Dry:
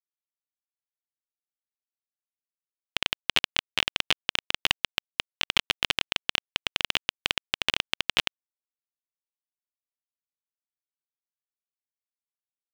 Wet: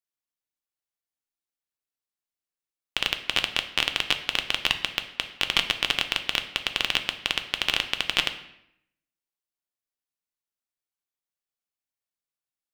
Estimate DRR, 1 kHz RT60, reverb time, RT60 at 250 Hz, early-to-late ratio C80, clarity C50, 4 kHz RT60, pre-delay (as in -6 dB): 6.5 dB, 0.75 s, 0.75 s, 0.85 s, 14.0 dB, 11.0 dB, 0.65 s, 3 ms